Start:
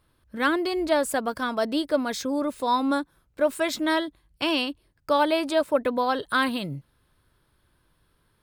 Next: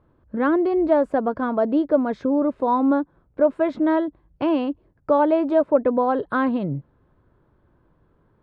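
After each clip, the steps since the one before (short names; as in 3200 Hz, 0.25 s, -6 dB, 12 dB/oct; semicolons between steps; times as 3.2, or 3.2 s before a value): Bessel low-pass 670 Hz, order 2; low shelf 110 Hz -8 dB; in parallel at -2 dB: compressor, threshold -35 dBFS, peak gain reduction 15 dB; on the sum: gain +6 dB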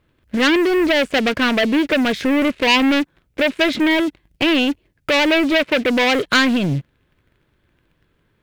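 limiter -13 dBFS, peak gain reduction 7 dB; sample leveller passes 2; resonant high shelf 1600 Hz +14 dB, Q 1.5; gain +1.5 dB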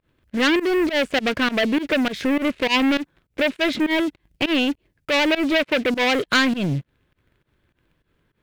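pump 101 bpm, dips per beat 2, -22 dB, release 99 ms; gain -3 dB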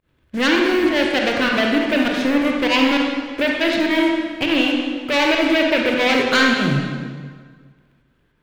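reverb RT60 1.7 s, pre-delay 23 ms, DRR -1 dB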